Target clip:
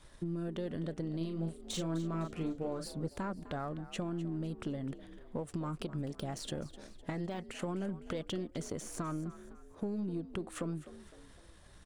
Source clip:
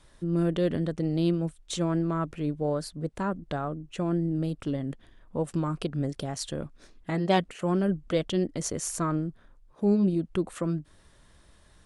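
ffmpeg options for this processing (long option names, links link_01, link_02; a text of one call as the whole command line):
ffmpeg -i in.wav -filter_complex "[0:a]aeval=exprs='if(lt(val(0),0),0.708*val(0),val(0))':channel_layout=same,deesser=0.85,alimiter=limit=-22dB:level=0:latency=1:release=99,acompressor=threshold=-36dB:ratio=6,asettb=1/sr,asplit=3[link_01][link_02][link_03];[link_01]atrim=end=1.174[link_04];[link_02]atrim=start=1.17:end=3.08,asetpts=PTS-STARTPTS,afade=type=in:duration=0.004:curve=qsin,afade=type=out:start_time=1.906:duration=0.004:curve=qsin,asplit=2[link_05][link_06];[link_06]adelay=37,volume=-6dB[link_07];[link_05][link_07]amix=inputs=2:normalize=0,atrim=end_sample=84231[link_08];[link_03]atrim=start=3.076[link_09];[link_04][link_08]acrossfade=duration=0.004:curve1=hsin:curve2=qsin[link_10];[link_10][link_09]acrossfade=duration=0.004:curve1=qsin:curve2=hsin,asplit=5[link_11][link_12][link_13][link_14][link_15];[link_12]adelay=254,afreqshift=56,volume=-15.5dB[link_16];[link_13]adelay=508,afreqshift=112,volume=-22.6dB[link_17];[link_14]adelay=762,afreqshift=168,volume=-29.8dB[link_18];[link_15]adelay=1016,afreqshift=224,volume=-36.9dB[link_19];[link_11][link_16][link_17][link_18][link_19]amix=inputs=5:normalize=0,volume=1dB" out.wav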